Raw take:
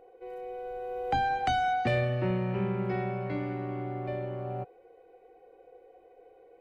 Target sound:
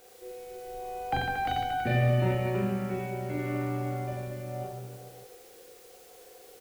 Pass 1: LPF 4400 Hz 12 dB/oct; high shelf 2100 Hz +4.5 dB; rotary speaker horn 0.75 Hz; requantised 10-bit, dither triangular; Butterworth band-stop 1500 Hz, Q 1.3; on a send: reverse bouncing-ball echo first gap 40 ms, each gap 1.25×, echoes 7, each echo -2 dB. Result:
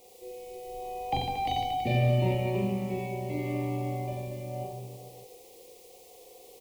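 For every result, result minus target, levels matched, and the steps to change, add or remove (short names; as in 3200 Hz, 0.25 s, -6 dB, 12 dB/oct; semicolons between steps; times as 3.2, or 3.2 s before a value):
2000 Hz band -5.5 dB; 4000 Hz band +3.0 dB
remove: Butterworth band-stop 1500 Hz, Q 1.3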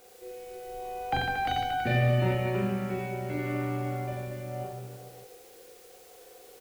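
4000 Hz band +2.5 dB
remove: high shelf 2100 Hz +4.5 dB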